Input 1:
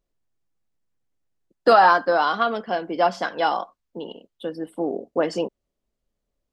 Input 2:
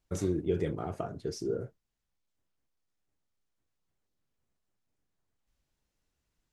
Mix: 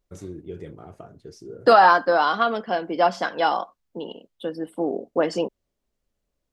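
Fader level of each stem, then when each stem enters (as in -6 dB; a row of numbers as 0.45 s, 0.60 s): +0.5 dB, -6.5 dB; 0.00 s, 0.00 s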